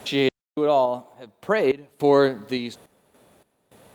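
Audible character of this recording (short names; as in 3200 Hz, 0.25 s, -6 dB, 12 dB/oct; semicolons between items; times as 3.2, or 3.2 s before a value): a quantiser's noise floor 10-bit, dither none; random-step tremolo 3.5 Hz, depth 100%; Opus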